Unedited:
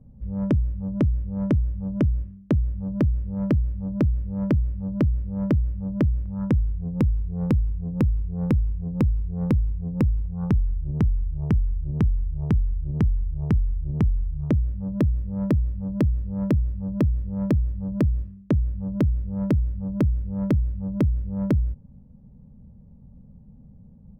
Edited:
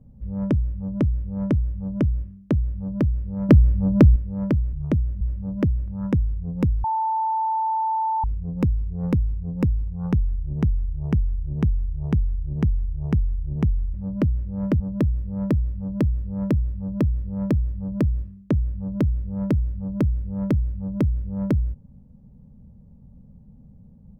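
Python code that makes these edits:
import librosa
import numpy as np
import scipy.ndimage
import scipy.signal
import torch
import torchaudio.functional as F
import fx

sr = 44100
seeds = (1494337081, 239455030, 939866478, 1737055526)

y = fx.edit(x, sr, fx.clip_gain(start_s=3.49, length_s=0.67, db=8.5),
    fx.swap(start_s=4.73, length_s=0.86, other_s=14.32, other_length_s=0.48),
    fx.bleep(start_s=7.22, length_s=1.4, hz=886.0, db=-20.0), tone=tone)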